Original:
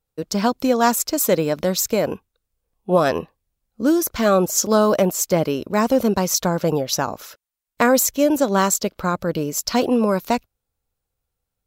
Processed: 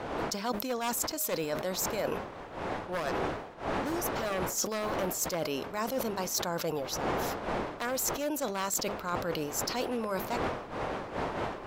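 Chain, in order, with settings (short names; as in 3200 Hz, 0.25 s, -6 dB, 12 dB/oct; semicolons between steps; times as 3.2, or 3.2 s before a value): one-sided fold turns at -12 dBFS; wind noise 600 Hz -23 dBFS; low shelf 440 Hz -11.5 dB; reverse; compressor 12:1, threshold -30 dBFS, peak gain reduction 18.5 dB; reverse; de-hum 205.8 Hz, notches 3; sustainer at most 72 dB/s; gain +1 dB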